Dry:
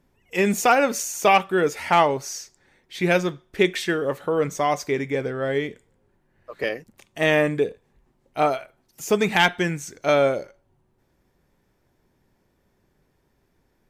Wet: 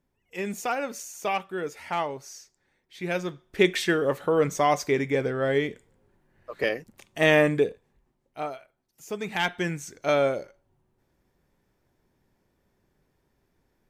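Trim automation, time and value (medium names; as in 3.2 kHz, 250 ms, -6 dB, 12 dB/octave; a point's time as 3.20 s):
3.00 s -11 dB
3.70 s 0 dB
7.57 s 0 dB
8.51 s -13 dB
9.15 s -13 dB
9.68 s -4 dB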